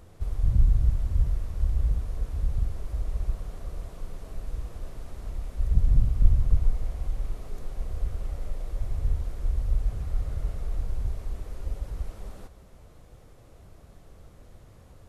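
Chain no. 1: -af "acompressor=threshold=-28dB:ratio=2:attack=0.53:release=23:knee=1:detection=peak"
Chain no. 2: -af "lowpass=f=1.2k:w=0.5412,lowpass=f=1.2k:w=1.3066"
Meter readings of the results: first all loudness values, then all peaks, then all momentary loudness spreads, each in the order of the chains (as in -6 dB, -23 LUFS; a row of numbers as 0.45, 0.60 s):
-35.5, -31.0 LUFS; -16.0, -4.0 dBFS; 22, 16 LU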